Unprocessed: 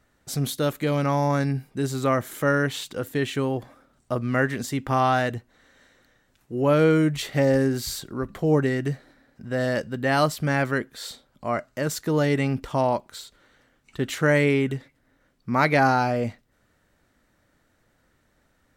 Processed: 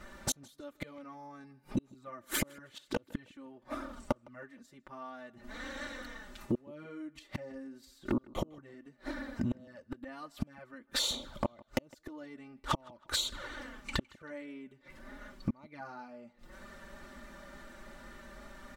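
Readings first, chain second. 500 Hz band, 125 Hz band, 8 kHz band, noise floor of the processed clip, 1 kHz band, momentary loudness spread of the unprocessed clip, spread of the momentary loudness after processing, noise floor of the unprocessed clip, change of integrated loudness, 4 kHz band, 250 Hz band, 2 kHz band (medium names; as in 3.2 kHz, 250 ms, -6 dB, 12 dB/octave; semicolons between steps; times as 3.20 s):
-19.5 dB, -19.5 dB, -5.0 dB, -67 dBFS, -18.0 dB, 13 LU, 16 LU, -67 dBFS, -15.5 dB, -4.0 dB, -14.0 dB, -16.0 dB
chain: inverted gate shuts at -22 dBFS, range -41 dB; treble shelf 7.8 kHz -8 dB; touch-sensitive flanger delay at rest 6.4 ms, full sweep at -40 dBFS; compression 8:1, threshold -47 dBFS, peak gain reduction 18.5 dB; peaking EQ 1.1 kHz +4.5 dB 0.44 oct; comb 3.4 ms, depth 48%; tape echo 158 ms, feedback 38%, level -22.5 dB, low-pass 4.9 kHz; trim +17 dB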